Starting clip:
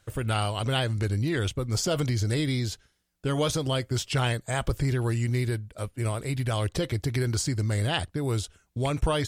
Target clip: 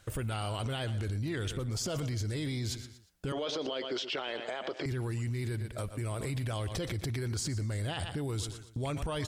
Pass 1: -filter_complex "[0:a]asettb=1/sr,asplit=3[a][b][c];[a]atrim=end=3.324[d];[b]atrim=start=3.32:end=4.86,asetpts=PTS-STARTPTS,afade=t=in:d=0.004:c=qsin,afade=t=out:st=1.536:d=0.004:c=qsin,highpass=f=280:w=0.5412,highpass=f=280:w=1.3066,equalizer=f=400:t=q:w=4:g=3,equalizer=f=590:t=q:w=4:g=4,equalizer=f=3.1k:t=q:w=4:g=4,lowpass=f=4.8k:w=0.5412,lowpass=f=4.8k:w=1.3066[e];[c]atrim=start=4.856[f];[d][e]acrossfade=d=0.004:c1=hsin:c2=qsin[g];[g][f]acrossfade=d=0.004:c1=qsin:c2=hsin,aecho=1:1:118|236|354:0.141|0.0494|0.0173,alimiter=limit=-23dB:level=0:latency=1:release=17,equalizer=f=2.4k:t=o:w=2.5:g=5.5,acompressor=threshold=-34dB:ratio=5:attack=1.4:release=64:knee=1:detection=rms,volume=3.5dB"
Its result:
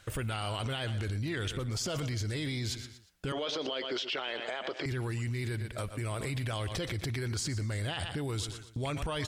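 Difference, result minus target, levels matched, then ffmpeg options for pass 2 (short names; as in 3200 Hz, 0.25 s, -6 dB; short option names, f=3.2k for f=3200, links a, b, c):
2000 Hz band +3.0 dB
-filter_complex "[0:a]asettb=1/sr,asplit=3[a][b][c];[a]atrim=end=3.324[d];[b]atrim=start=3.32:end=4.86,asetpts=PTS-STARTPTS,afade=t=in:d=0.004:c=qsin,afade=t=out:st=1.536:d=0.004:c=qsin,highpass=f=280:w=0.5412,highpass=f=280:w=1.3066,equalizer=f=400:t=q:w=4:g=3,equalizer=f=590:t=q:w=4:g=4,equalizer=f=3.1k:t=q:w=4:g=4,lowpass=f=4.8k:w=0.5412,lowpass=f=4.8k:w=1.3066[e];[c]atrim=start=4.856[f];[d][e]acrossfade=d=0.004:c1=hsin:c2=qsin[g];[g][f]acrossfade=d=0.004:c1=qsin:c2=hsin,aecho=1:1:118|236|354:0.141|0.0494|0.0173,alimiter=limit=-23dB:level=0:latency=1:release=17,acompressor=threshold=-34dB:ratio=5:attack=1.4:release=64:knee=1:detection=rms,volume=3.5dB"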